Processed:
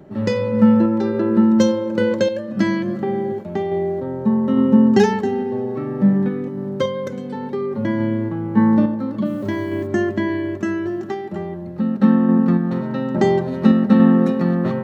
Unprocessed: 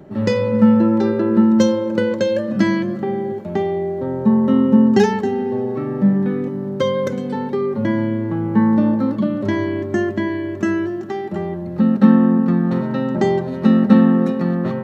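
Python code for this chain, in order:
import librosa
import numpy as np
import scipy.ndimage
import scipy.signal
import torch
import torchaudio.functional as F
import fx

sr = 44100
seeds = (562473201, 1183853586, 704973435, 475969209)

y = fx.tremolo_random(x, sr, seeds[0], hz=3.5, depth_pct=55)
y = fx.quant_dither(y, sr, seeds[1], bits=10, dither='triangular', at=(9.24, 9.86), fade=0.02)
y = F.gain(torch.from_numpy(y), 1.0).numpy()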